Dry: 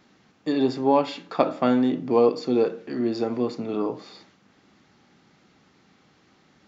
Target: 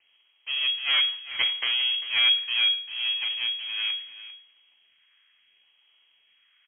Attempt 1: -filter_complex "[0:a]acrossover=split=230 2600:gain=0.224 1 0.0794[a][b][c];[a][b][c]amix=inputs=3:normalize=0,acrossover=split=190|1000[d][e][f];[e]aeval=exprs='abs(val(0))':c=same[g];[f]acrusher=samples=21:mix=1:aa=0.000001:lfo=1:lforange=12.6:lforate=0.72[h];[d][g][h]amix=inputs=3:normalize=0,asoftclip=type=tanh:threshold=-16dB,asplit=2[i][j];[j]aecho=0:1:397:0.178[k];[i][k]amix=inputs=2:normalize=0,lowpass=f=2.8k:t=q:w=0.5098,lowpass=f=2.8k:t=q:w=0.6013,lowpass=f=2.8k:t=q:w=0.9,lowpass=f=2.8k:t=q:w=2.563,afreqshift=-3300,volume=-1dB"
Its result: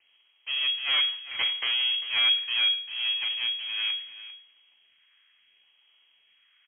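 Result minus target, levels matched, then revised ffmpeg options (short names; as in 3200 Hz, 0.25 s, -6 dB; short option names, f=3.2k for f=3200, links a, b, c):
soft clip: distortion +11 dB
-filter_complex "[0:a]acrossover=split=230 2600:gain=0.224 1 0.0794[a][b][c];[a][b][c]amix=inputs=3:normalize=0,acrossover=split=190|1000[d][e][f];[e]aeval=exprs='abs(val(0))':c=same[g];[f]acrusher=samples=21:mix=1:aa=0.000001:lfo=1:lforange=12.6:lforate=0.72[h];[d][g][h]amix=inputs=3:normalize=0,asoftclip=type=tanh:threshold=-8dB,asplit=2[i][j];[j]aecho=0:1:397:0.178[k];[i][k]amix=inputs=2:normalize=0,lowpass=f=2.8k:t=q:w=0.5098,lowpass=f=2.8k:t=q:w=0.6013,lowpass=f=2.8k:t=q:w=0.9,lowpass=f=2.8k:t=q:w=2.563,afreqshift=-3300,volume=-1dB"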